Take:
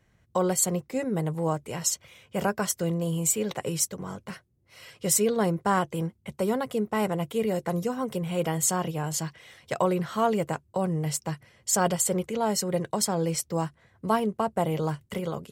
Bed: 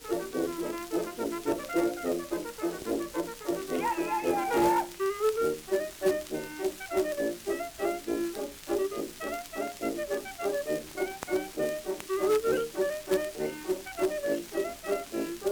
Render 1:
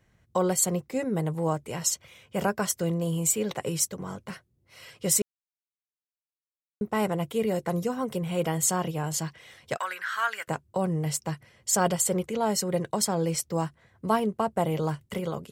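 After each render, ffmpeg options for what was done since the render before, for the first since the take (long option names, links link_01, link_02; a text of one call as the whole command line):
ffmpeg -i in.wav -filter_complex "[0:a]asettb=1/sr,asplit=3[link_01][link_02][link_03];[link_01]atrim=end=9.774[link_04];[link_02]atrim=start=9.77:end=10.48,asetpts=PTS-STARTPTS,afade=type=in:duration=0.004:curve=qsin,afade=type=out:start_time=0.706:duration=0.004:curve=qsin,highpass=frequency=1600:width_type=q:width=6.3[link_05];[link_03]atrim=start=10.476[link_06];[link_04][link_05]acrossfade=duration=0.004:curve1=hsin:curve2=qsin[link_07];[link_07][link_06]acrossfade=duration=0.004:curve1=qsin:curve2=hsin,asplit=3[link_08][link_09][link_10];[link_08]atrim=end=5.22,asetpts=PTS-STARTPTS,afade=type=out:start_time=5.216:duration=0.004:curve=hsin[link_11];[link_09]atrim=start=5.22:end=6.81,asetpts=PTS-STARTPTS,volume=0[link_12];[link_10]atrim=start=6.81,asetpts=PTS-STARTPTS,afade=type=in:duration=0.004:curve=hsin[link_13];[link_11][link_12][link_13]concat=n=3:v=0:a=1" out.wav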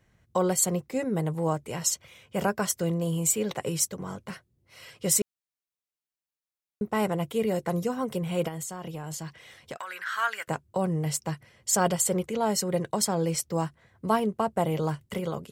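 ffmpeg -i in.wav -filter_complex "[0:a]asplit=3[link_01][link_02][link_03];[link_01]afade=type=out:start_time=8.47:duration=0.02[link_04];[link_02]acompressor=threshold=-32dB:ratio=16:attack=3.2:release=140:knee=1:detection=peak,afade=type=in:start_time=8.47:duration=0.02,afade=type=out:start_time=10.05:duration=0.02[link_05];[link_03]afade=type=in:start_time=10.05:duration=0.02[link_06];[link_04][link_05][link_06]amix=inputs=3:normalize=0" out.wav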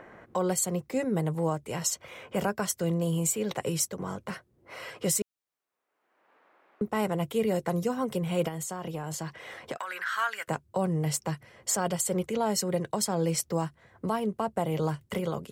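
ffmpeg -i in.wav -filter_complex "[0:a]acrossover=split=270|1800|4800[link_01][link_02][link_03][link_04];[link_02]acompressor=mode=upward:threshold=-31dB:ratio=2.5[link_05];[link_01][link_05][link_03][link_04]amix=inputs=4:normalize=0,alimiter=limit=-16.5dB:level=0:latency=1:release=221" out.wav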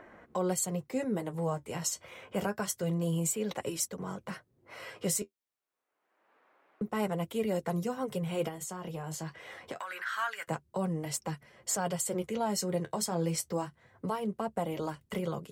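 ffmpeg -i in.wav -af "flanger=delay=2.9:depth=10:regen=-43:speed=0.27:shape=triangular" out.wav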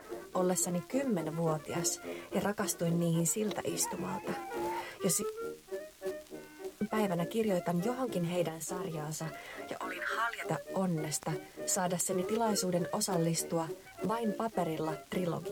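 ffmpeg -i in.wav -i bed.wav -filter_complex "[1:a]volume=-12dB[link_01];[0:a][link_01]amix=inputs=2:normalize=0" out.wav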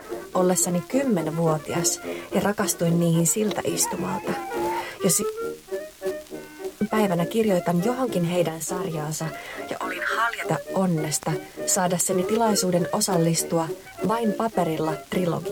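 ffmpeg -i in.wav -af "volume=10dB" out.wav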